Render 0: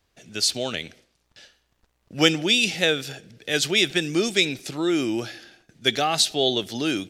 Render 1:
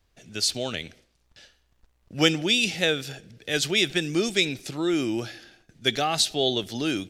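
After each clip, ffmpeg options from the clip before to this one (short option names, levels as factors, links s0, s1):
-af "lowshelf=f=74:g=12,volume=0.75"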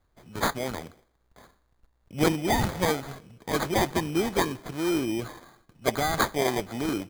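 -af "acrusher=samples=16:mix=1:aa=0.000001,volume=0.841"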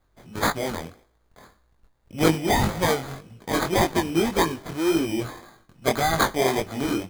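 -af "flanger=delay=18:depth=6:speed=1.8,volume=2.11"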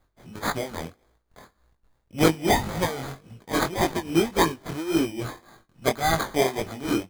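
-af "tremolo=f=3.6:d=0.79,volume=1.26"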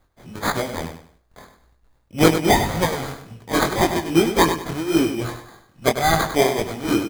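-af "aecho=1:1:99|198|297:0.355|0.0993|0.0278,volume=1.68"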